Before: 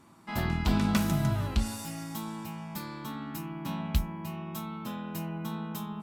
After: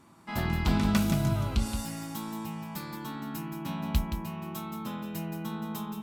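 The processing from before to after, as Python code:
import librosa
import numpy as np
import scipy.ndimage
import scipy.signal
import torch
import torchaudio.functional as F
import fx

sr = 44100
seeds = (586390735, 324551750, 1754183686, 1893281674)

y = fx.notch(x, sr, hz=1800.0, q=6.6, at=(0.99, 1.71))
y = y + 10.0 ** (-8.0 / 20.0) * np.pad(y, (int(173 * sr / 1000.0), 0))[:len(y)]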